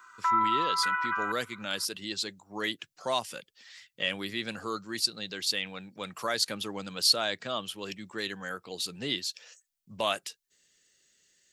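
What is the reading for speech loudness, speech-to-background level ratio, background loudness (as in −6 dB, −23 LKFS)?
−32.0 LKFS, −4.0 dB, −28.0 LKFS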